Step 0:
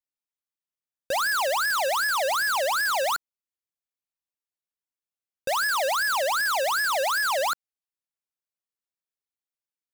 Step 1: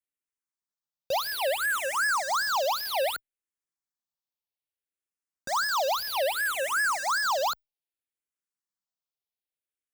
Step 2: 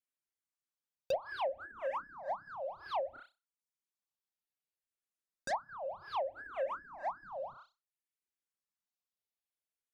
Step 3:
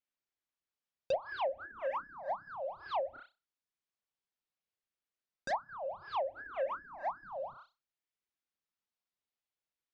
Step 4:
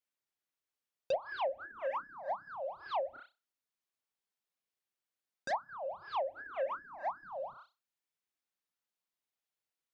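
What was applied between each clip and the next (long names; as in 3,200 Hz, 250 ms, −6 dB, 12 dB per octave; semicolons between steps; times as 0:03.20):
frequency shifter mixed with the dry sound −0.62 Hz
flutter between parallel walls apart 5.4 metres, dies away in 0.3 s; treble cut that deepens with the level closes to 350 Hz, closed at −22 dBFS; reverb reduction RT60 0.66 s; level −3.5 dB
low-pass filter 4,900 Hz 12 dB per octave; level +1 dB
low-shelf EQ 120 Hz −8.5 dB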